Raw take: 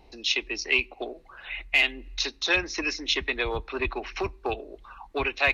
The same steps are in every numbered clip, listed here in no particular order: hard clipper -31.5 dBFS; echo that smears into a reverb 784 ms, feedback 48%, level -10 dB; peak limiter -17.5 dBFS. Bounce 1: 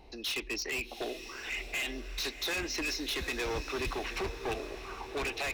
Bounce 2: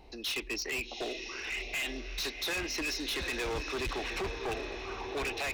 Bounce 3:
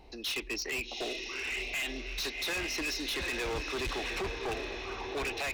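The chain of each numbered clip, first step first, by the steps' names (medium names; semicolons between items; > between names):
peak limiter > hard clipper > echo that smears into a reverb; peak limiter > echo that smears into a reverb > hard clipper; echo that smears into a reverb > peak limiter > hard clipper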